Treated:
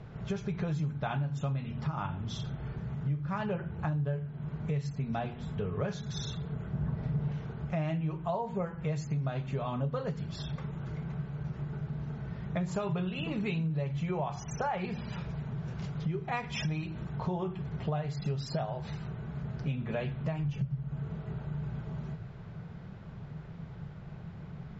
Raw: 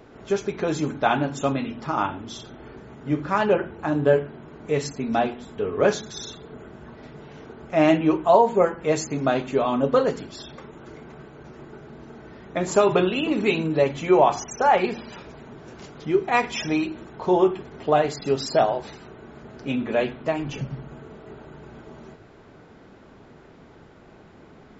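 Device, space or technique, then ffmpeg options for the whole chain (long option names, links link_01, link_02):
jukebox: -filter_complex "[0:a]lowpass=5500,lowshelf=frequency=210:width_type=q:width=3:gain=10,acompressor=threshold=-27dB:ratio=6,asettb=1/sr,asplit=3[link_01][link_02][link_03];[link_01]atrim=end=6.734[link_04];[link_02]atrim=start=6.73:end=7.32,asetpts=PTS-STARTPTS,afade=type=in:duration=0.004:curve=qsin,afade=type=out:start_time=0.586:duration=0.004:curve=qsin,tiltshelf=frequency=1400:gain=4.5[link_05];[link_03]atrim=start=7.316[link_06];[link_04][link_05]acrossfade=duration=0.004:curve1=hsin:curve2=qsin[link_07];[link_07][link_06]acrossfade=duration=0.004:curve1=qsin:curve2=hsin,volume=-3.5dB"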